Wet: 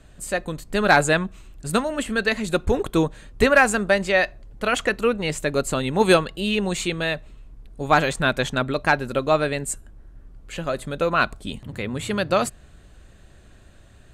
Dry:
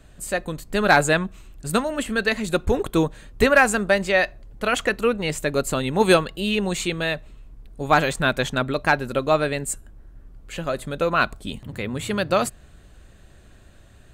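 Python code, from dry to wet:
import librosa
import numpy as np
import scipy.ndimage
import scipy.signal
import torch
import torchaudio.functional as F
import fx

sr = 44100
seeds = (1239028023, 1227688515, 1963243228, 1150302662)

y = scipy.signal.sosfilt(scipy.signal.butter(2, 12000.0, 'lowpass', fs=sr, output='sos'), x)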